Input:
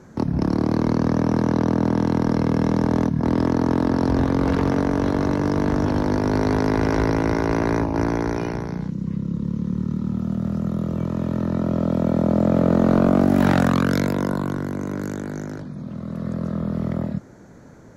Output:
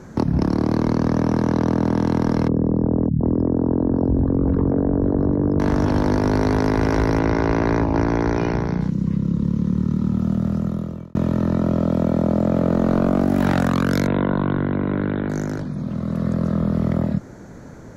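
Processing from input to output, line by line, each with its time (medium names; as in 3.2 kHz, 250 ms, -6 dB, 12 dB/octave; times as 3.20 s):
2.48–5.60 s: resonances exaggerated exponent 2
7.19–8.81 s: low-pass 5.5 kHz
10.33–11.15 s: fade out
14.07–15.30 s: steep low-pass 3.9 kHz 96 dB/octave
whole clip: compression, threshold -21 dBFS; bass shelf 60 Hz +6 dB; trim +5.5 dB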